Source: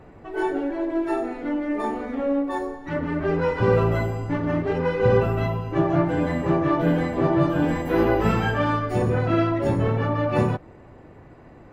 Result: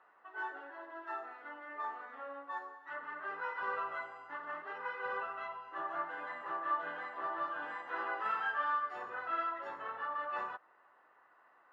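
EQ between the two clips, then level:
four-pole ladder band-pass 1,500 Hz, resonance 40%
notch filter 2,300 Hz, Q 5.8
+1.5 dB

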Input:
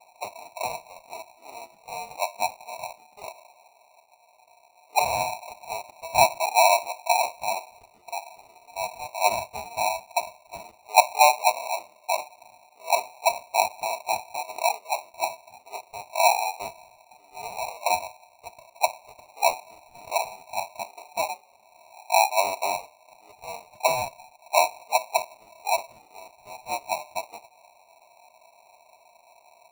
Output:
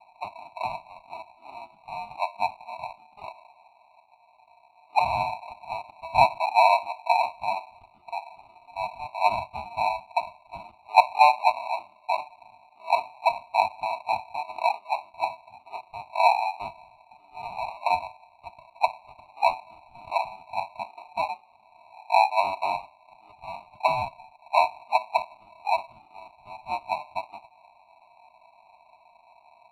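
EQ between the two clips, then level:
low-pass filter 2,700 Hz 6 dB per octave
high-frequency loss of the air 52 metres
phaser with its sweep stopped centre 1,800 Hz, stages 6
+3.5 dB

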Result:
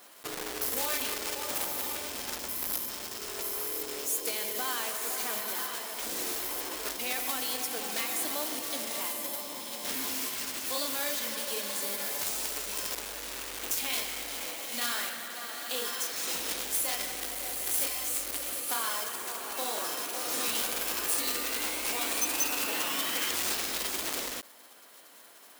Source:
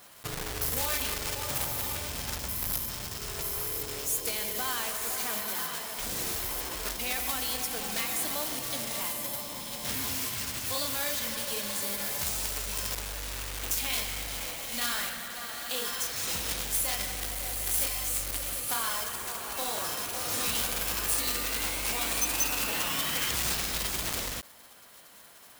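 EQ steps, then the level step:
low shelf with overshoot 190 Hz −14 dB, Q 1.5
−1.0 dB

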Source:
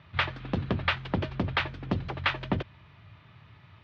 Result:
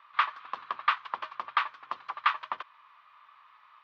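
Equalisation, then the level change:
high-pass with resonance 1,100 Hz, resonance Q 7.1
−6.0 dB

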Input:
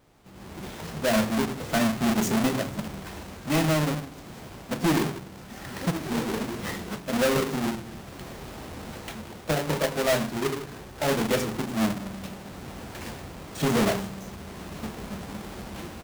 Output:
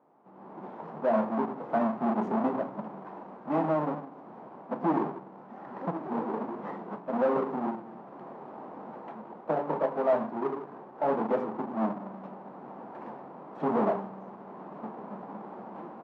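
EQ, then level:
high-pass filter 190 Hz 24 dB per octave
low-pass with resonance 930 Hz, resonance Q 2.3
−4.5 dB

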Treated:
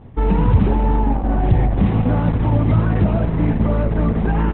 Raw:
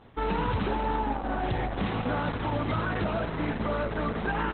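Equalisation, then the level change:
bass and treble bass +11 dB, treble −14 dB
parametric band 1,400 Hz −6.5 dB 0.74 octaves
high-shelf EQ 3,400 Hz −8.5 dB
+6.5 dB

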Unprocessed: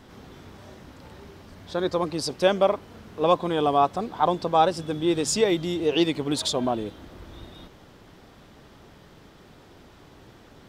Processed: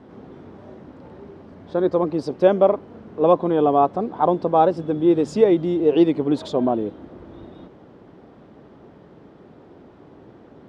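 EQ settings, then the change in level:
resonant band-pass 340 Hz, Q 0.68
+7.0 dB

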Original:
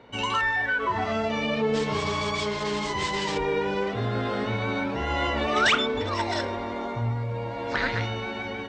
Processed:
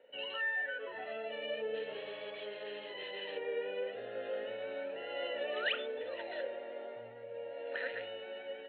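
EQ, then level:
formant filter e
high-pass filter 170 Hz 6 dB per octave
Chebyshev low-pass with heavy ripple 4,200 Hz, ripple 9 dB
+5.5 dB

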